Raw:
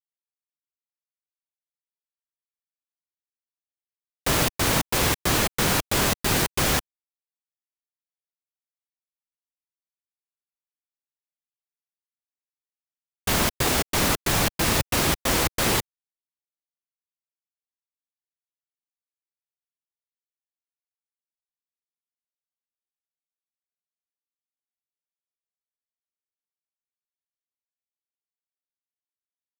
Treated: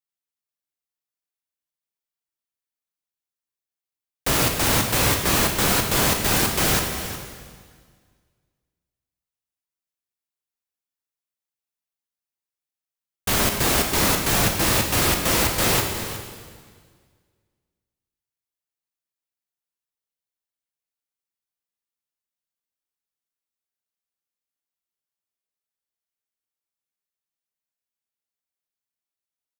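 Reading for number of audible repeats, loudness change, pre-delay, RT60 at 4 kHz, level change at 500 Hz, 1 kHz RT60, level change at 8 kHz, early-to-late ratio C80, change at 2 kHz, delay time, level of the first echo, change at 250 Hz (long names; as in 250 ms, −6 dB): 1, +2.5 dB, 11 ms, 1.6 s, +2.0 dB, 1.7 s, +3.0 dB, 5.5 dB, +2.0 dB, 363 ms, −13.5 dB, +2.0 dB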